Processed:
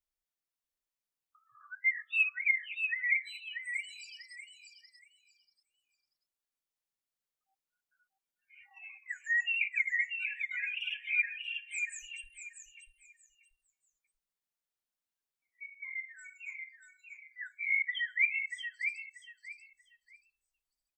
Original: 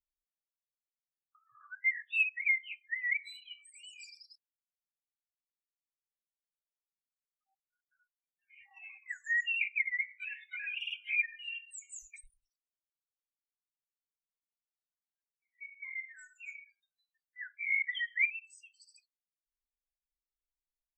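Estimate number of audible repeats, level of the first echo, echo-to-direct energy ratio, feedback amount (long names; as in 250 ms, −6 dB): 3, −6.0 dB, −6.0 dB, 23%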